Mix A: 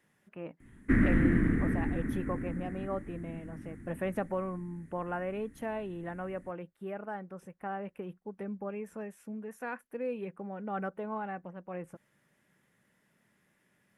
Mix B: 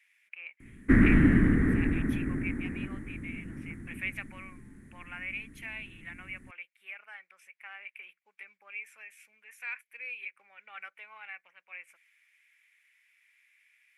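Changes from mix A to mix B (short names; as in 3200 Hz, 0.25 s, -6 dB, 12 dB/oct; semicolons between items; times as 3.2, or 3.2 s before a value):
speech: add resonant high-pass 2300 Hz, resonance Q 9.1; background +4.5 dB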